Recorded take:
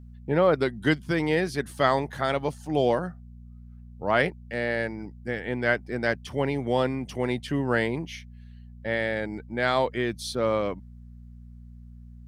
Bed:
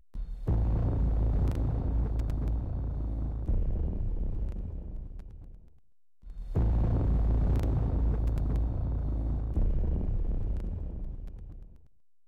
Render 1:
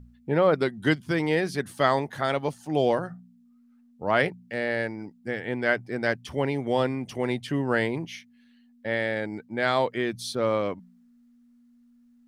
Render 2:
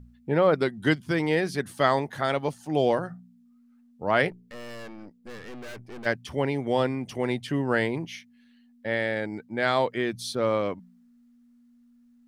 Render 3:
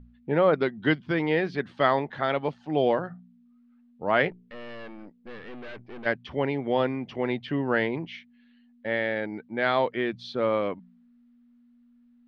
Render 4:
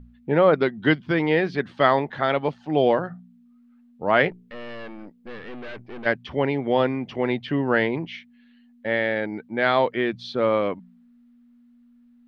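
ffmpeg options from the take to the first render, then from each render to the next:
-af "bandreject=f=60:t=h:w=4,bandreject=f=120:t=h:w=4,bandreject=f=180:t=h:w=4"
-filter_complex "[0:a]asplit=3[a][b][c];[a]afade=t=out:st=4.3:d=0.02[d];[b]aeval=exprs='(tanh(89.1*val(0)+0.65)-tanh(0.65))/89.1':c=same,afade=t=in:st=4.3:d=0.02,afade=t=out:st=6.05:d=0.02[e];[c]afade=t=in:st=6.05:d=0.02[f];[d][e][f]amix=inputs=3:normalize=0"
-af "lowpass=f=3.7k:w=0.5412,lowpass=f=3.7k:w=1.3066,equalizer=f=99:w=1.6:g=-6"
-af "volume=4dB"

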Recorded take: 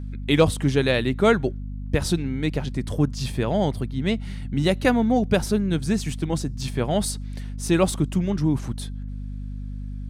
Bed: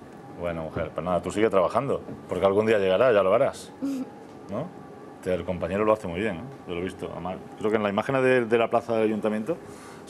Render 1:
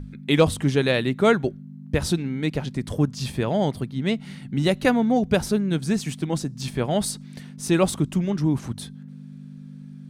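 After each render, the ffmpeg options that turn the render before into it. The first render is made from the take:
-af "bandreject=f=50:t=h:w=6,bandreject=f=100:t=h:w=6"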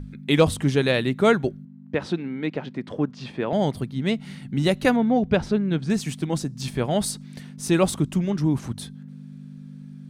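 -filter_complex "[0:a]asettb=1/sr,asplit=3[a][b][c];[a]atrim=end=1.654[d];[b]atrim=start=1.65:end=3.53,asetpts=PTS-STARTPTS,afade=t=in:d=0.004:c=qsin,afade=t=out:st=1.876:d=0.004:c=qsin,highpass=220,lowpass=2.8k[e];[c]atrim=start=3.526[f];[d][e]acrossfade=d=0.004:c1=hsin:c2=qsin[g];[g][f]acrossfade=d=0.004:c1=qsin:c2=hsin,asettb=1/sr,asplit=3[h][i][j];[h]atrim=end=4.964[k];[i]atrim=start=4.96:end=5.9,asetpts=PTS-STARTPTS,afade=t=in:d=0.004:c=qsin,afade=t=out:st=0.936:d=0.004:c=qsin,lowpass=3.6k[l];[j]atrim=start=5.896[m];[k][l]acrossfade=d=0.004:c1=hsin:c2=qsin[n];[n][m]acrossfade=d=0.004:c1=qsin:c2=hsin"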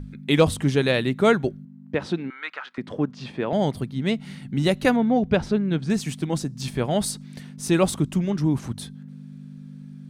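-filter_complex "[0:a]asettb=1/sr,asplit=3[a][b][c];[a]atrim=end=2.304[d];[b]atrim=start=2.3:end=2.78,asetpts=PTS-STARTPTS,afade=t=in:d=0.004:c=qsin,afade=t=out:st=0.476:d=0.004:c=qsin,highpass=f=1.3k:t=q:w=4.2[e];[c]atrim=start=2.776[f];[d][e]acrossfade=d=0.004:c1=hsin:c2=qsin[g];[g][f]acrossfade=d=0.004:c1=qsin:c2=hsin"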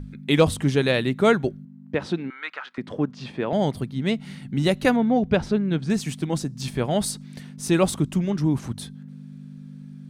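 -af anull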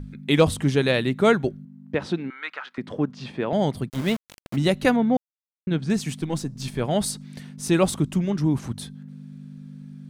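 -filter_complex "[0:a]asplit=3[a][b][c];[a]afade=t=out:st=3.88:d=0.02[d];[b]aeval=exprs='val(0)*gte(abs(val(0)),0.0335)':c=same,afade=t=in:st=3.88:d=0.02,afade=t=out:st=4.55:d=0.02[e];[c]afade=t=in:st=4.55:d=0.02[f];[d][e][f]amix=inputs=3:normalize=0,asettb=1/sr,asplit=3[g][h][i];[g]atrim=end=6.214[j];[h]atrim=start=6.21:end=6.83,asetpts=PTS-STARTPTS,afade=t=in:d=0.004:c=qsin,afade=t=out:st=0.616:d=0.004:c=qsin,aeval=exprs='if(lt(val(0),0),0.708*val(0),val(0))':c=same[k];[i]atrim=start=6.826[l];[j][k]acrossfade=d=0.004:c1=hsin:c2=qsin[m];[m][l]acrossfade=d=0.004:c1=qsin:c2=hsin,asplit=3[n][o][p];[n]atrim=end=5.17,asetpts=PTS-STARTPTS,afade=t=out:st=5.166:d=0.004:c=hsin[q];[o]atrim=start=5.17:end=5.67,asetpts=PTS-STARTPTS,volume=0[r];[p]atrim=start=5.67,asetpts=PTS-STARTPTS,afade=t=in:d=0.004:c=hsin[s];[q][r][s]concat=n=3:v=0:a=1"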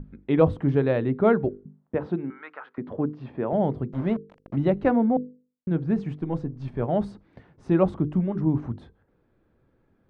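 -af "lowpass=1.1k,bandreject=f=50:t=h:w=6,bandreject=f=100:t=h:w=6,bandreject=f=150:t=h:w=6,bandreject=f=200:t=h:w=6,bandreject=f=250:t=h:w=6,bandreject=f=300:t=h:w=6,bandreject=f=350:t=h:w=6,bandreject=f=400:t=h:w=6,bandreject=f=450:t=h:w=6,bandreject=f=500:t=h:w=6"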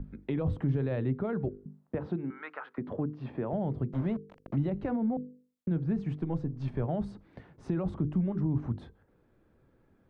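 -filter_complex "[0:a]alimiter=limit=-16.5dB:level=0:latency=1:release=13,acrossover=split=160[a][b];[b]acompressor=threshold=-34dB:ratio=3[c];[a][c]amix=inputs=2:normalize=0"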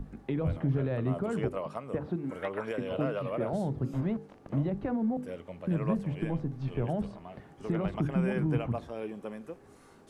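-filter_complex "[1:a]volume=-14.5dB[a];[0:a][a]amix=inputs=2:normalize=0"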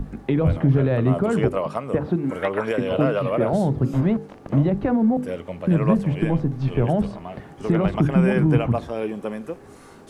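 -af "volume=11dB"

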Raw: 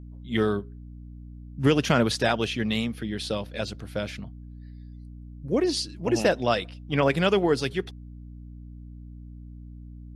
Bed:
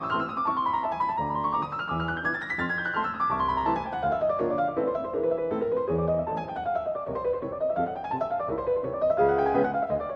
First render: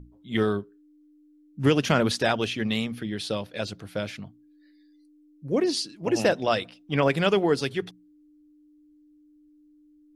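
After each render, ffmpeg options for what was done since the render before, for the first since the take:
-af "bandreject=f=60:t=h:w=6,bandreject=f=120:t=h:w=6,bandreject=f=180:t=h:w=6,bandreject=f=240:t=h:w=6"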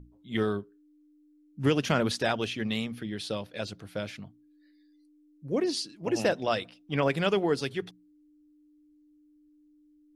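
-af "volume=-4dB"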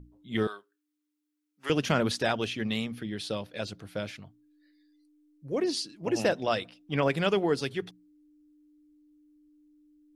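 -filter_complex "[0:a]asettb=1/sr,asplit=3[a][b][c];[a]atrim=end=0.474[d];[b]atrim=start=0.47:end=1.7,asetpts=PTS-STARTPTS,afade=t=in:d=0.004:c=qsin,afade=t=out:st=1.226:d=0.004:c=qsin,highpass=1k[e];[c]atrim=start=1.696[f];[d][e]acrossfade=d=0.004:c1=hsin:c2=qsin[g];[g][f]acrossfade=d=0.004:c1=qsin:c2=hsin,asettb=1/sr,asplit=3[h][i][j];[h]atrim=end=4.114[k];[i]atrim=start=4.11:end=5.6,asetpts=PTS-STARTPTS,afade=t=in:d=0.004:c=qsin,afade=t=out:st=1.486:d=0.004:c=qsin,equalizer=f=210:w=1.5:g=-6.5[l];[j]atrim=start=5.596[m];[k][l]acrossfade=d=0.004:c1=hsin:c2=qsin[n];[n][m]acrossfade=d=0.004:c1=qsin:c2=hsin"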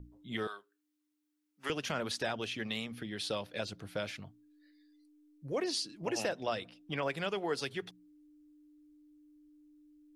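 -filter_complex "[0:a]acrossover=split=500[a][b];[a]acompressor=threshold=-40dB:ratio=6[c];[b]alimiter=level_in=0.5dB:limit=-24dB:level=0:latency=1:release=446,volume=-0.5dB[d];[c][d]amix=inputs=2:normalize=0"

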